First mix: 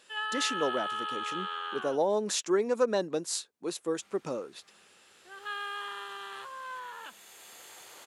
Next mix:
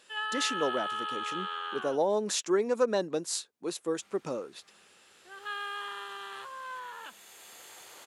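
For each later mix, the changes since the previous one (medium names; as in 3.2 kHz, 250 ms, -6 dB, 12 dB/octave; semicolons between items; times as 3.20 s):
no change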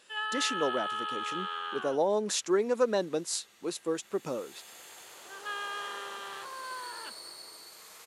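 second sound: entry -2.80 s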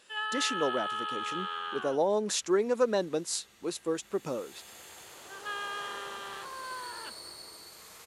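second sound: add bass shelf 220 Hz +9.5 dB; master: add bass shelf 63 Hz +10 dB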